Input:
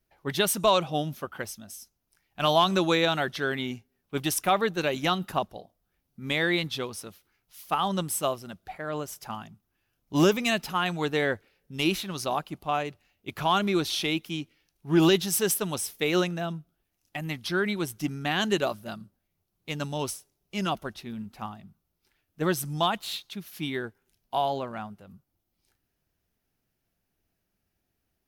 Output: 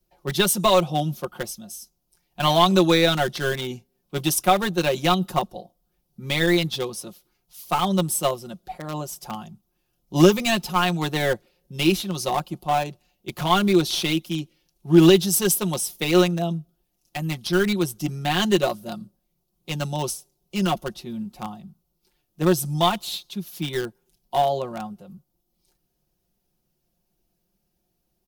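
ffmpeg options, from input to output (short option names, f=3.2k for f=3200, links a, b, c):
-filter_complex "[0:a]aecho=1:1:5.6:0.75,acrossover=split=150|1200|2700[a][b][c][d];[c]acrusher=bits=3:dc=4:mix=0:aa=0.000001[e];[a][b][e][d]amix=inputs=4:normalize=0,volume=3.5dB"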